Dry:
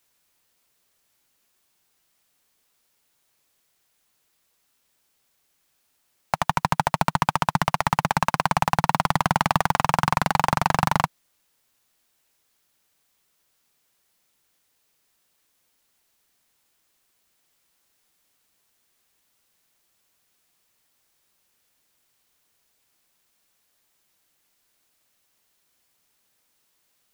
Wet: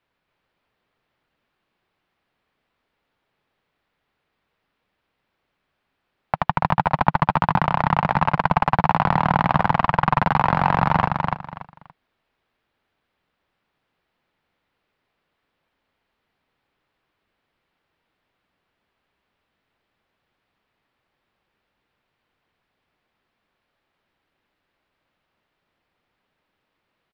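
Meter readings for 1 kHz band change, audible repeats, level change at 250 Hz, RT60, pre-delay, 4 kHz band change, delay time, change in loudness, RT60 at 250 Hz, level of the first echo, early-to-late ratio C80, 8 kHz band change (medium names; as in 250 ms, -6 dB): +3.0 dB, 3, +4.0 dB, no reverb, no reverb, -5.0 dB, 286 ms, +2.5 dB, no reverb, -3.5 dB, no reverb, under -20 dB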